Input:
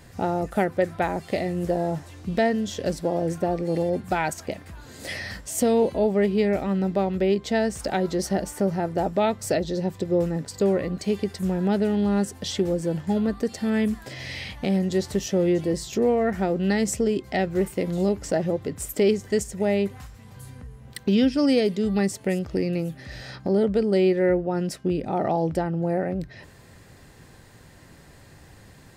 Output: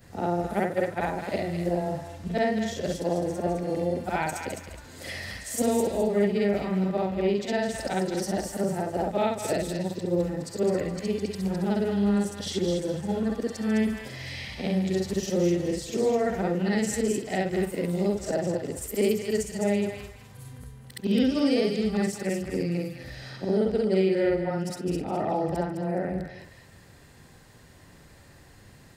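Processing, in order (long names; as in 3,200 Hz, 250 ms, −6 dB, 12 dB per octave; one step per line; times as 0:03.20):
every overlapping window played backwards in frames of 138 ms
on a send: feedback echo with a high-pass in the loop 209 ms, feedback 31%, high-pass 1,200 Hz, level −5 dB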